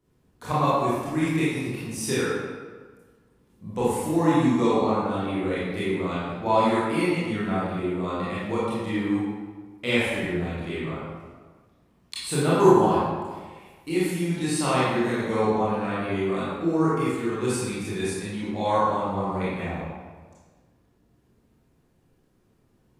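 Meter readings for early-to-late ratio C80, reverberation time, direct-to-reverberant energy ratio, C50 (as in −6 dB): 0.5 dB, 1.4 s, −10.0 dB, −3.5 dB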